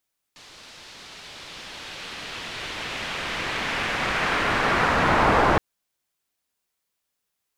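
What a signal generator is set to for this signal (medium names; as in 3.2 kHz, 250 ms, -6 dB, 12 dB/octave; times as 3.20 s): swept filtered noise white, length 5.22 s lowpass, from 4.6 kHz, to 1 kHz, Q 1.2, linear, gain ramp +36.5 dB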